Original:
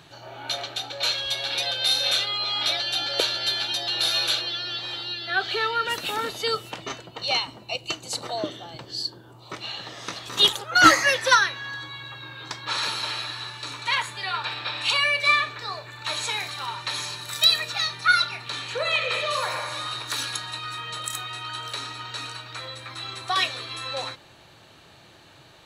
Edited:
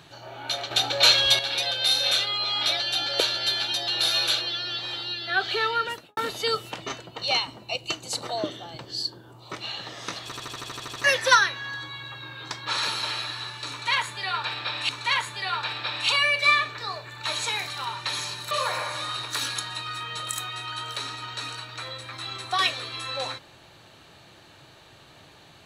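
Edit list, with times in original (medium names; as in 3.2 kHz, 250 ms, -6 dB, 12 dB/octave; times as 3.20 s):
0.71–1.39 s: gain +8 dB
5.76–6.17 s: studio fade out
10.24 s: stutter in place 0.08 s, 10 plays
13.70–14.89 s: loop, 2 plays
17.32–19.28 s: delete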